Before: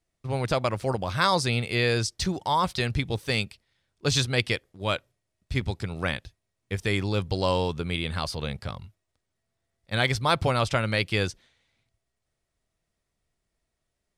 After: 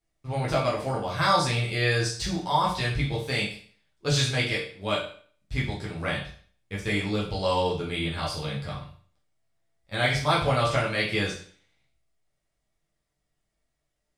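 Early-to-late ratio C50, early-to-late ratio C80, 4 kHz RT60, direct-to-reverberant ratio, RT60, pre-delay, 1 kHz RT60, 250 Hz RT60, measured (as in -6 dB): 5.5 dB, 10.0 dB, 0.45 s, -6.5 dB, 0.50 s, 7 ms, 0.45 s, 0.50 s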